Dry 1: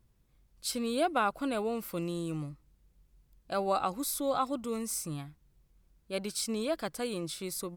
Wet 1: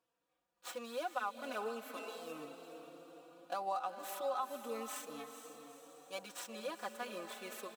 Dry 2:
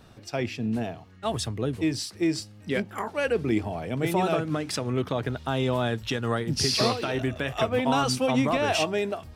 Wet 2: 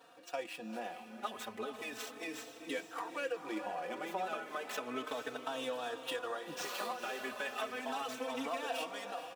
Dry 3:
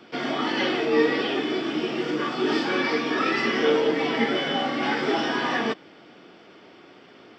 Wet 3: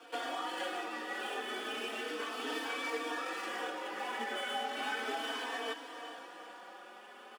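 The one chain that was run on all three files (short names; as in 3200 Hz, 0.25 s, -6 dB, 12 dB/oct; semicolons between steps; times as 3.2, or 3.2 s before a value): median filter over 9 samples; HPF 590 Hz 12 dB/oct; notch 2100 Hz, Q 9; comb 4 ms, depth 44%; compressor 4:1, threshold -36 dBFS; on a send: diffused feedback echo 0.457 s, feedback 57%, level -9.5 dB; on the sum: endless flanger 3.9 ms +0.34 Hz; gain +2 dB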